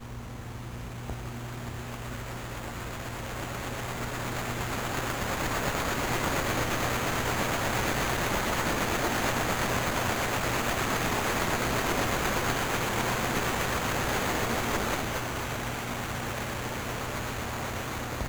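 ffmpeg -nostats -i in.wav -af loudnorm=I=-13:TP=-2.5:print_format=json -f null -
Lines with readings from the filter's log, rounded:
"input_i" : "-30.1",
"input_tp" : "-13.0",
"input_lra" : "6.6",
"input_thresh" : "-40.2",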